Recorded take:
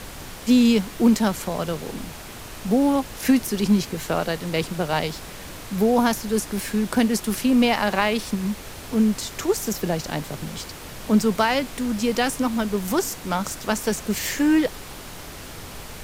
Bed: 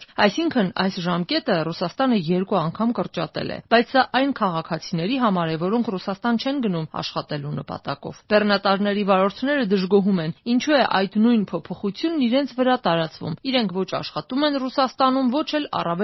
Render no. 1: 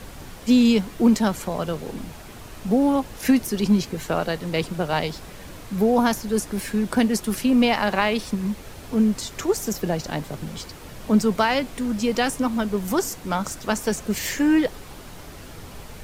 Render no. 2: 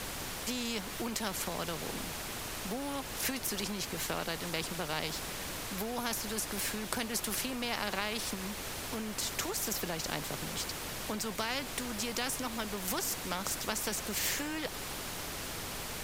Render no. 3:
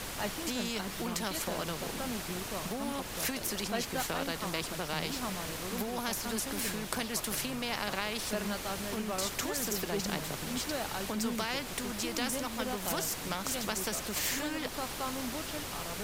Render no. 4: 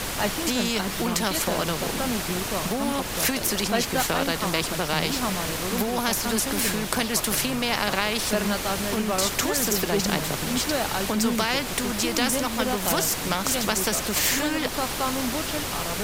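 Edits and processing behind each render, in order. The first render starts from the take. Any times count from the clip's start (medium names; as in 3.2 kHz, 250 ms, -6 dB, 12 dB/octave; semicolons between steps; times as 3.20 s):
noise reduction 6 dB, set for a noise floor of -38 dBFS
compression 2:1, threshold -25 dBFS, peak gain reduction 7.5 dB; spectrum-flattening compressor 2:1
add bed -19.5 dB
trim +10 dB; peak limiter -3 dBFS, peak gain reduction 1.5 dB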